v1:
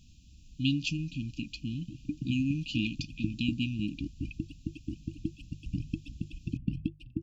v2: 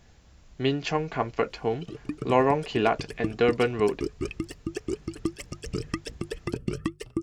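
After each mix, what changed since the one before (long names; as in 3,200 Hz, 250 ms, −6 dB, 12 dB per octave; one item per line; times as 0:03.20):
background: remove high-frequency loss of the air 460 metres
master: remove linear-phase brick-wall band-stop 320–2,400 Hz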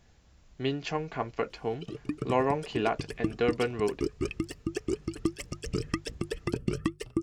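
speech −5.0 dB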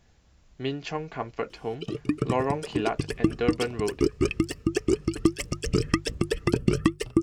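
background +7.5 dB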